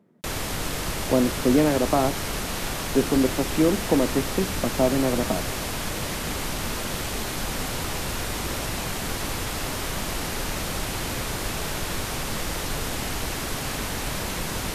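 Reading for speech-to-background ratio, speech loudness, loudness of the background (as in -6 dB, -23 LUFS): 4.5 dB, -24.0 LUFS, -28.5 LUFS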